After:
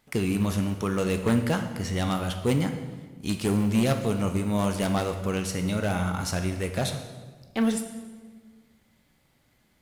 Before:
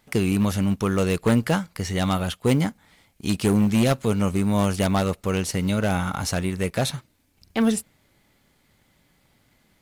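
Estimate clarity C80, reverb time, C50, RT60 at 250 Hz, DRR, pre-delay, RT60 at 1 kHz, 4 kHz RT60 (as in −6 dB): 10.0 dB, 1.5 s, 8.5 dB, 1.8 s, 6.5 dB, 12 ms, 1.3 s, 1.1 s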